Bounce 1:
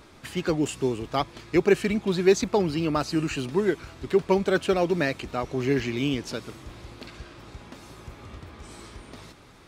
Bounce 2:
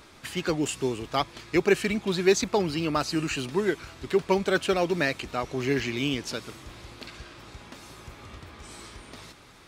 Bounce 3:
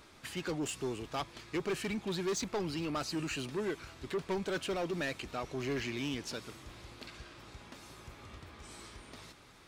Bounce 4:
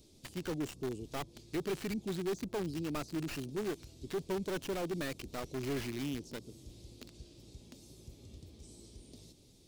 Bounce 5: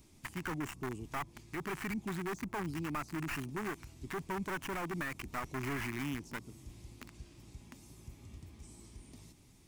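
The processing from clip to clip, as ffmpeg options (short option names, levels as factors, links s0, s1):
-af "tiltshelf=f=970:g=-3"
-af "asoftclip=type=tanh:threshold=0.0668,volume=0.501"
-filter_complex "[0:a]acrossover=split=520|3600[s0][s1][s2];[s1]acrusher=bits=4:dc=4:mix=0:aa=0.000001[s3];[s2]acompressor=threshold=0.00141:ratio=5[s4];[s0][s3][s4]amix=inputs=3:normalize=0"
-af "equalizer=f=500:t=o:w=1:g=-11,equalizer=f=1000:t=o:w=1:g=9,equalizer=f=2000:t=o:w=1:g=8,equalizer=f=4000:t=o:w=1:g=-10,alimiter=level_in=1.78:limit=0.0631:level=0:latency=1:release=68,volume=0.562,volume=1.26"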